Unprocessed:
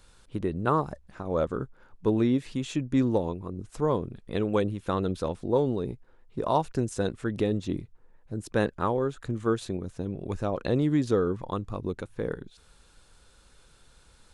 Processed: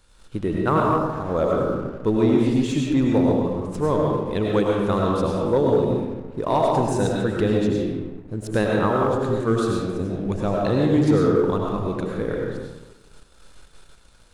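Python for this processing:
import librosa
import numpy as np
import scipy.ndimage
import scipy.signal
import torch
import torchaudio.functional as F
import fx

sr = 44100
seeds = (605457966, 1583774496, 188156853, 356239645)

y = fx.rev_freeverb(x, sr, rt60_s=1.3, hf_ratio=0.6, predelay_ms=60, drr_db=-2.0)
y = fx.leveller(y, sr, passes=1)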